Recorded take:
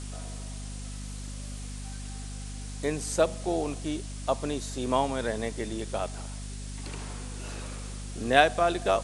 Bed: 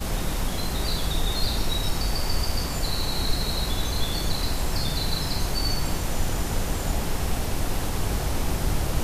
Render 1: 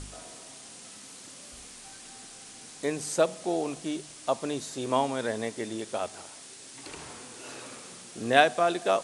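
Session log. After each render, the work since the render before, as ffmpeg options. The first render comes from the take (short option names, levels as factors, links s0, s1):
-af "bandreject=f=50:t=h:w=4,bandreject=f=100:t=h:w=4,bandreject=f=150:t=h:w=4,bandreject=f=200:t=h:w=4,bandreject=f=250:t=h:w=4"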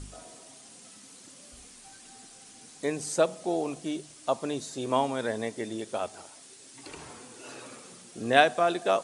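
-af "afftdn=nr=6:nf=-47"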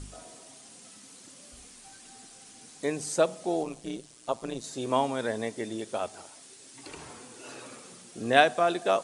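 -filter_complex "[0:a]asettb=1/sr,asplit=3[s0][s1][s2];[s0]atrim=end=3.634[s3];[s1]atrim=start=3.63:end=4.64,asetpts=PTS-STARTPTS,afade=t=in:d=0.004:c=qsin,afade=t=out:st=1.006:d=0.004:c=qsin,tremolo=f=120:d=0.824[s4];[s2]atrim=start=4.636[s5];[s3][s4]acrossfade=d=0.004:c1=hsin:c2=qsin[s6];[s6][s5]acrossfade=d=0.004:c1=qsin:c2=hsin"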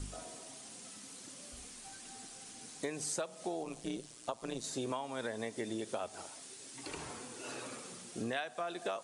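-filter_complex "[0:a]acrossover=split=730|2000[s0][s1][s2];[s0]alimiter=level_in=1.06:limit=0.0631:level=0:latency=1:release=457,volume=0.944[s3];[s3][s1][s2]amix=inputs=3:normalize=0,acompressor=threshold=0.02:ratio=16"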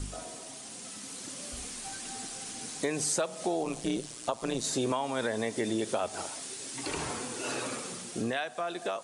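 -filter_complex "[0:a]dynaudnorm=f=130:g=17:m=1.68,asplit=2[s0][s1];[s1]alimiter=level_in=1.88:limit=0.0631:level=0:latency=1:release=19,volume=0.531,volume=0.891[s2];[s0][s2]amix=inputs=2:normalize=0"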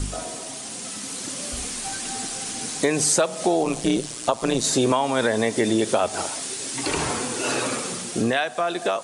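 -af "volume=3.16"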